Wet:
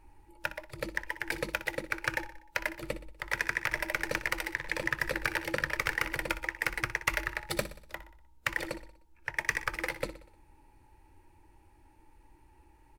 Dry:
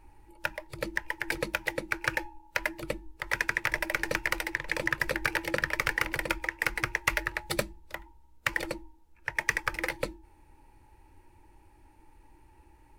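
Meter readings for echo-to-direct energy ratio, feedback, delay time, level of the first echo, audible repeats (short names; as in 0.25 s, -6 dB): -12.5 dB, 51%, 61 ms, -14.0 dB, 4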